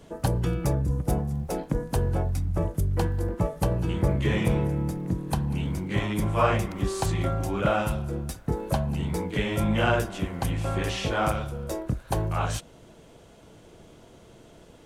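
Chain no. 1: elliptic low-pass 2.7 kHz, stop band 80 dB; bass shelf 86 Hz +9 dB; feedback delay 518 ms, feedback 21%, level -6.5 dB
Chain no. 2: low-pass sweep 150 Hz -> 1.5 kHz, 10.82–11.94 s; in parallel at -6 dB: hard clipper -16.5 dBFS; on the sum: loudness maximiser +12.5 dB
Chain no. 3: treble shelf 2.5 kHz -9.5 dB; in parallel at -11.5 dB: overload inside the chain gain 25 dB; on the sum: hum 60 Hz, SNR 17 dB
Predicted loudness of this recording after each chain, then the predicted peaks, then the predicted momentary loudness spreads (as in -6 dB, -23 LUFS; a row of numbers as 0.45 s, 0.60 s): -25.0 LUFS, -10.5 LUFS, -26.5 LUFS; -8.0 dBFS, -1.0 dBFS, -9.0 dBFS; 6 LU, 6 LU, 20 LU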